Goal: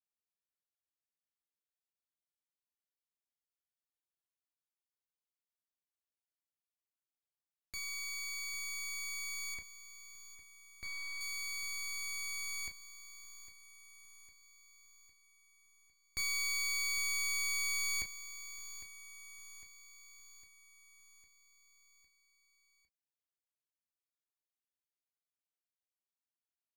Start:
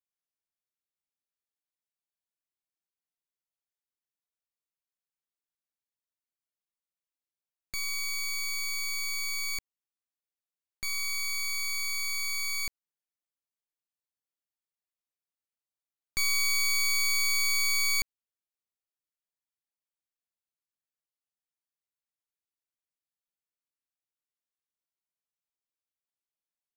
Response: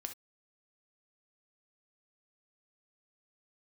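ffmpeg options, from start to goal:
-filter_complex "[0:a]asettb=1/sr,asplit=3[a][b][c];[a]atrim=end=9.544[d];[b]atrim=start=9.54:end=11.21,asetpts=PTS-STARTPTS,afade=t=in:d=0.004:c=qsin,afade=t=out:st=1.666:d=0.004:c=qsin,lowpass=f=3.8k:p=1[e];[c]atrim=start=11.206[f];[d][e]acrossfade=d=0.004:c1=hsin:c2=qsin[g];[g][f]acrossfade=d=0.004:c1=qsin:c2=hsin,aecho=1:1:805|1610|2415|3220|4025|4830:0.211|0.118|0.0663|0.0371|0.0208|0.0116[h];[1:a]atrim=start_sample=2205,asetrate=83790,aresample=44100[i];[h][i]afir=irnorm=-1:irlink=0"

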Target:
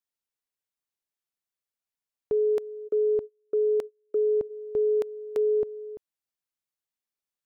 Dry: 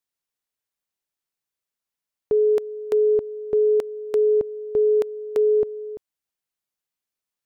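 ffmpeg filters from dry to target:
-filter_complex "[0:a]asplit=3[a][b][c];[a]afade=t=out:st=2.87:d=0.02[d];[b]agate=range=-33dB:threshold=-25dB:ratio=16:detection=peak,afade=t=in:st=2.87:d=0.02,afade=t=out:st=4.49:d=0.02[e];[c]afade=t=in:st=4.49:d=0.02[f];[d][e][f]amix=inputs=3:normalize=0,volume=-5.5dB"

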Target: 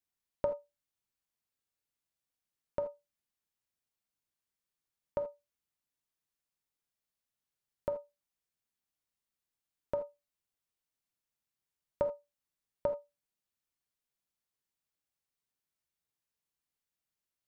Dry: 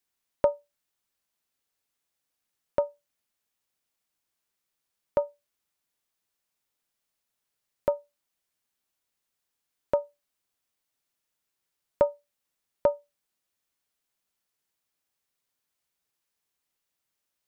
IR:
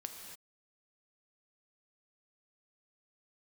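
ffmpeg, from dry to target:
-filter_complex "[0:a]bass=f=250:g=6,treble=f=4k:g=0[a];[1:a]atrim=start_sample=2205,atrim=end_sample=3969[b];[a][b]afir=irnorm=-1:irlink=0,volume=-5.5dB"

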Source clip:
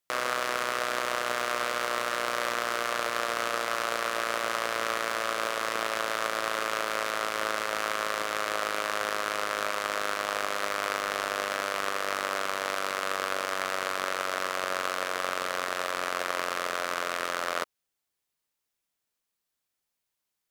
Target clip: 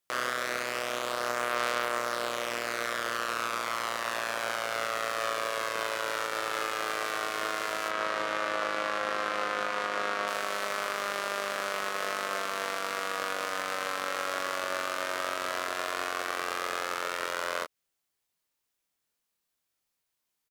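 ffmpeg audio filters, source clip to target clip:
-filter_complex "[0:a]asettb=1/sr,asplit=3[a][b][c];[a]atrim=end=7.884[d];[b]atrim=start=7.88:end=10.28,asetpts=PTS-STARTPTS,afade=t=in:d=0.004:c=qsin,afade=t=out:st=2.396:d=0.004:c=qsin,aemphasis=mode=reproduction:type=50fm[e];[c]atrim=start=10.276[f];[d][e]acrossfade=d=0.004:c1=hsin:c2=qsin[g];[g][f]acrossfade=d=0.004:c1=qsin:c2=hsin,alimiter=limit=-15.5dB:level=0:latency=1:release=175,asplit=2[h][i];[i]adelay=25,volume=-4.5dB[j];[h][j]amix=inputs=2:normalize=0"

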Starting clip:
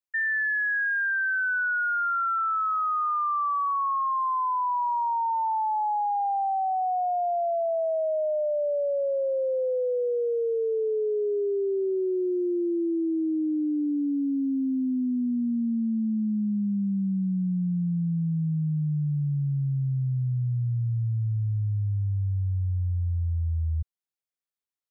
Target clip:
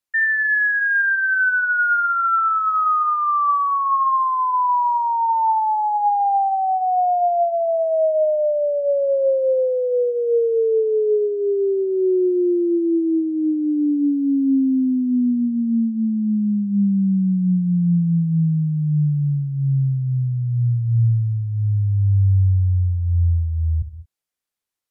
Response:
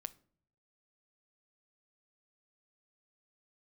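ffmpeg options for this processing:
-filter_complex "[1:a]atrim=start_sample=2205,atrim=end_sample=6174,asetrate=26460,aresample=44100[a];[0:a][a]afir=irnorm=-1:irlink=0,volume=8.5dB"

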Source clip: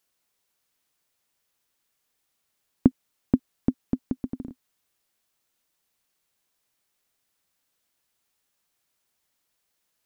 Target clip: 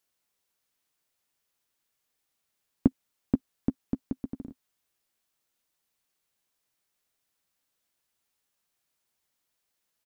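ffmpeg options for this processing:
-filter_complex "[0:a]asplit=2[a][b];[b]adelay=14,volume=-14dB[c];[a][c]amix=inputs=2:normalize=0,volume=-4dB"

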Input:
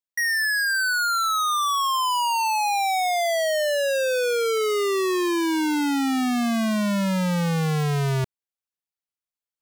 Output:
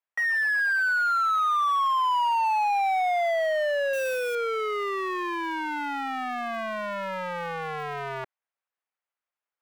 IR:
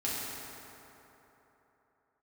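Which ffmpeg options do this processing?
-filter_complex "[0:a]aeval=exprs='0.0794*(cos(1*acos(clip(val(0)/0.0794,-1,1)))-cos(1*PI/2))+0.0282*(cos(5*acos(clip(val(0)/0.0794,-1,1)))-cos(5*PI/2))+0.0251*(cos(6*acos(clip(val(0)/0.0794,-1,1)))-cos(6*PI/2))+0.02*(cos(8*acos(clip(val(0)/0.0794,-1,1)))-cos(8*PI/2))':c=same,acrossover=split=490 2500:gain=0.0708 1 0.0891[a][b][c];[a][b][c]amix=inputs=3:normalize=0,asettb=1/sr,asplit=3[d][e][f];[d]atrim=end=3.934[g];[e]atrim=start=3.93:end=4.35,asetpts=PTS-STARTPTS,afade=t=in:d=0.004:c=qsin,afade=t=out:st=0.416:d=0.004:c=qsin,acrusher=bits=2:mode=log:mix=0:aa=0.000001[h];[f]atrim=start=4.346[i];[g][h]acrossfade=d=0.004:c1=hsin:c2=qsin[j];[j][i]acrossfade=d=0.004:c1=qsin:c2=hsin"

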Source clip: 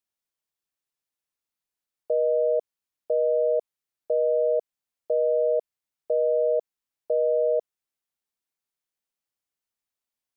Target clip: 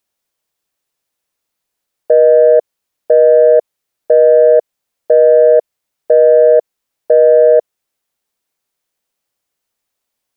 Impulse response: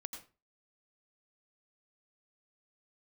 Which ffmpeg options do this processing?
-af "equalizer=f=540:t=o:w=1:g=4,acontrast=82,volume=5.5dB"

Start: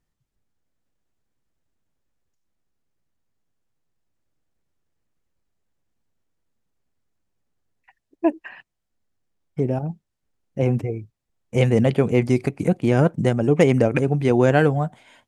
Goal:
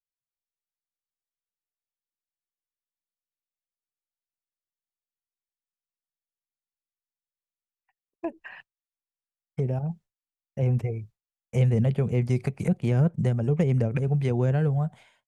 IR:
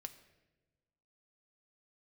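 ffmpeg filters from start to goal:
-filter_complex "[0:a]agate=range=-33dB:threshold=-41dB:ratio=3:detection=peak,equalizer=f=290:t=o:w=0.53:g=-15,acrossover=split=340[a][b];[b]acompressor=threshold=-35dB:ratio=6[c];[a][c]amix=inputs=2:normalize=0"

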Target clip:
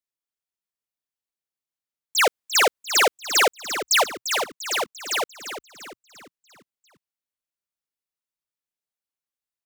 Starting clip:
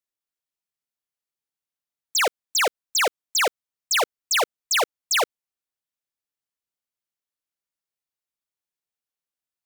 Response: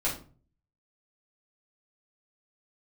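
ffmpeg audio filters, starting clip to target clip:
-filter_complex "[0:a]asplit=3[a][b][c];[a]afade=t=out:st=2.17:d=0.02[d];[b]acontrast=82,afade=t=in:st=2.17:d=0.02,afade=t=out:st=4.02:d=0.02[e];[c]afade=t=in:st=4.02:d=0.02[f];[d][e][f]amix=inputs=3:normalize=0,asplit=6[g][h][i][j][k][l];[h]adelay=346,afreqshift=-62,volume=-10dB[m];[i]adelay=692,afreqshift=-124,volume=-16.6dB[n];[j]adelay=1038,afreqshift=-186,volume=-23.1dB[o];[k]adelay=1384,afreqshift=-248,volume=-29.7dB[p];[l]adelay=1730,afreqshift=-310,volume=-36.2dB[q];[g][m][n][o][p][q]amix=inputs=6:normalize=0,volume=-4dB"

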